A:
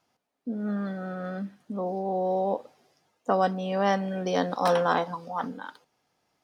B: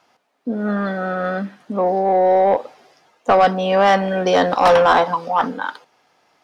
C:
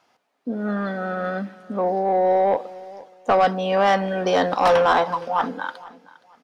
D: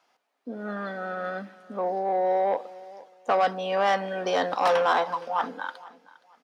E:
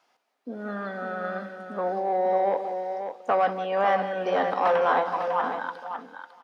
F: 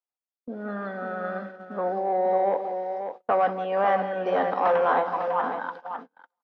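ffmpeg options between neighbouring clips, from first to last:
ffmpeg -i in.wav -filter_complex "[0:a]asplit=2[link_01][link_02];[link_02]highpass=frequency=720:poles=1,volume=16dB,asoftclip=type=tanh:threshold=-10.5dB[link_03];[link_01][link_03]amix=inputs=2:normalize=0,lowpass=frequency=2600:poles=1,volume=-6dB,volume=7dB" out.wav
ffmpeg -i in.wav -af "aecho=1:1:469|938:0.1|0.025,volume=-4dB" out.wav
ffmpeg -i in.wav -af "highpass=frequency=390:poles=1,volume=-4dB" out.wav
ffmpeg -i in.wav -filter_complex "[0:a]acrossover=split=2600[link_01][link_02];[link_02]acompressor=threshold=-53dB:ratio=4:attack=1:release=60[link_03];[link_01][link_03]amix=inputs=2:normalize=0,asplit=2[link_04][link_05];[link_05]aecho=0:1:174|550:0.237|0.398[link_06];[link_04][link_06]amix=inputs=2:normalize=0" out.wav
ffmpeg -i in.wav -af "aemphasis=mode=reproduction:type=75fm,agate=range=-33dB:threshold=-38dB:ratio=16:detection=peak" out.wav

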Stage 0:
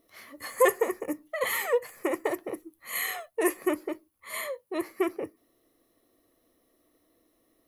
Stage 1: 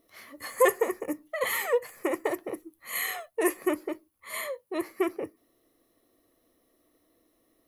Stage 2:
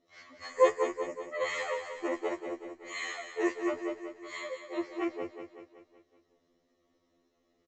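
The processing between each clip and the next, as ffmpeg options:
ffmpeg -i in.wav -af anull out.wav
ffmpeg -i in.wav -filter_complex "[0:a]asplit=2[link_01][link_02];[link_02]aecho=0:1:188|376|564|752|940|1128:0.376|0.199|0.106|0.056|0.0297|0.0157[link_03];[link_01][link_03]amix=inputs=2:normalize=0,aresample=16000,aresample=44100,afftfilt=real='re*2*eq(mod(b,4),0)':imag='im*2*eq(mod(b,4),0)':win_size=2048:overlap=0.75,volume=-2dB" out.wav

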